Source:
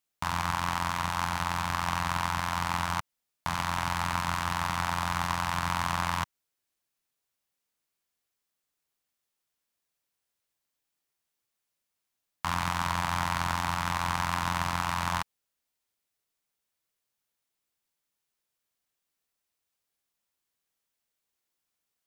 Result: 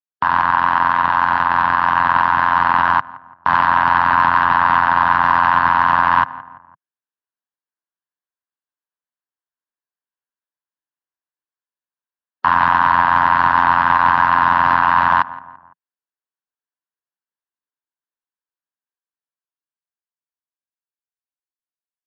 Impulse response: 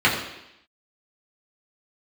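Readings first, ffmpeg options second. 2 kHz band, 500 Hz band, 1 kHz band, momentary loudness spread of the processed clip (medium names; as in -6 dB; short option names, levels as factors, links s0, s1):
+16.5 dB, +12.0 dB, +17.5 dB, 4 LU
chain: -filter_complex "[0:a]afftdn=nr=30:nf=-44,dynaudnorm=f=200:g=31:m=2.51,asoftclip=type=tanh:threshold=0.596,highpass=160,equalizer=f=170:t=q:w=4:g=-7,equalizer=f=300:t=q:w=4:g=3,equalizer=f=1000:t=q:w=4:g=8,equalizer=f=1600:t=q:w=4:g=9,equalizer=f=2300:t=q:w=4:g=-9,equalizer=f=3500:t=q:w=4:g=-5,lowpass=f=3600:w=0.5412,lowpass=f=3600:w=1.3066,asplit=2[s0][s1];[s1]adelay=169,lowpass=f=1500:p=1,volume=0.0794,asplit=2[s2][s3];[s3]adelay=169,lowpass=f=1500:p=1,volume=0.49,asplit=2[s4][s5];[s5]adelay=169,lowpass=f=1500:p=1,volume=0.49[s6];[s0][s2][s4][s6]amix=inputs=4:normalize=0,alimiter=level_in=3.98:limit=0.891:release=50:level=0:latency=1,volume=0.891"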